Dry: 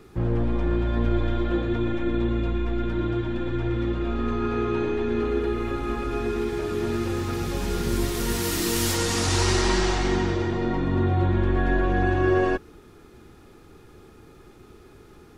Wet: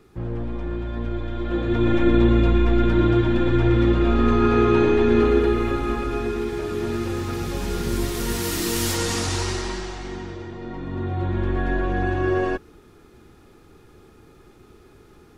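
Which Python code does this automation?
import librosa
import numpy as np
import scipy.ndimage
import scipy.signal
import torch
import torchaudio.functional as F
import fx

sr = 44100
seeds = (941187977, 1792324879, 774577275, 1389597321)

y = fx.gain(x, sr, db=fx.line((1.3, -4.5), (1.96, 8.0), (5.2, 8.0), (6.39, 0.5), (9.12, 0.5), (9.9, -9.5), (10.57, -9.5), (11.45, -1.0)))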